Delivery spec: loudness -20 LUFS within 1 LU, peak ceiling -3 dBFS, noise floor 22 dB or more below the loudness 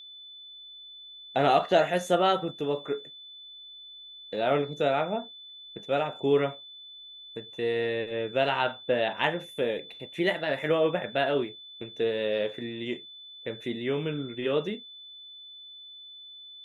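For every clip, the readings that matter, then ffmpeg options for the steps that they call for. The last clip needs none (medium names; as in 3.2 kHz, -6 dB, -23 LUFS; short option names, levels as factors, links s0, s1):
steady tone 3.5 kHz; tone level -44 dBFS; loudness -28.5 LUFS; peak level -10.5 dBFS; loudness target -20.0 LUFS
-> -af "bandreject=f=3500:w=30"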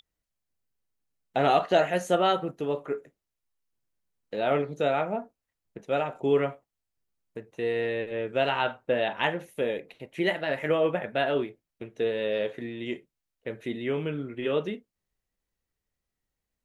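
steady tone not found; loudness -28.5 LUFS; peak level -10.5 dBFS; loudness target -20.0 LUFS
-> -af "volume=2.66,alimiter=limit=0.708:level=0:latency=1"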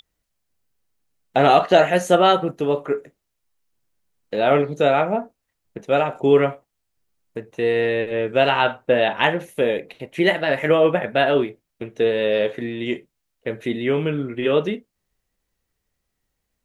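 loudness -20.0 LUFS; peak level -3.0 dBFS; noise floor -78 dBFS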